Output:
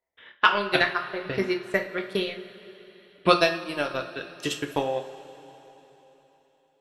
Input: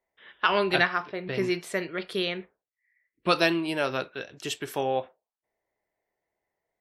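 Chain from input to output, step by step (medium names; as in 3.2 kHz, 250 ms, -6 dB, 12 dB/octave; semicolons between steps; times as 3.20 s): transient shaper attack +11 dB, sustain -12 dB; two-slope reverb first 0.36 s, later 3.9 s, from -18 dB, DRR 3.5 dB; trim -5 dB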